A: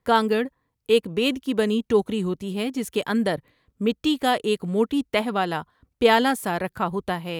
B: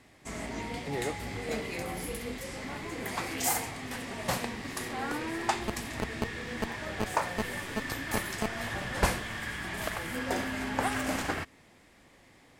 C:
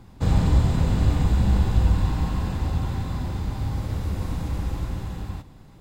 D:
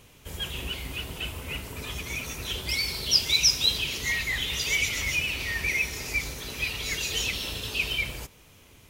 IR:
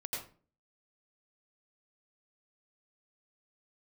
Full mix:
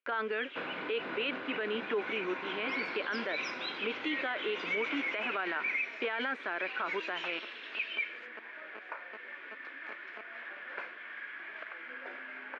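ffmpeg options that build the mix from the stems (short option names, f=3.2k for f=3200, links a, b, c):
-filter_complex "[0:a]bandreject=f=490:w=12,volume=-3.5dB[a];[1:a]acompressor=threshold=-58dB:ratio=1.5,adelay=1750,volume=-2.5dB[b];[2:a]acompressor=threshold=-19dB:ratio=6,adelay=350,volume=-2.5dB[c];[3:a]aemphasis=mode=production:type=50kf,volume=-12.5dB[d];[a][b][c][d]amix=inputs=4:normalize=0,highpass=f=350:w=0.5412,highpass=f=350:w=1.3066,equalizer=f=440:t=q:w=4:g=-3,equalizer=f=800:t=q:w=4:g=-7,equalizer=f=1.5k:t=q:w=4:g=10,equalizer=f=2.3k:t=q:w=4:g=7,lowpass=f=3k:w=0.5412,lowpass=f=3k:w=1.3066,agate=range=-27dB:threshold=-57dB:ratio=16:detection=peak,alimiter=level_in=0.5dB:limit=-24dB:level=0:latency=1:release=32,volume=-0.5dB"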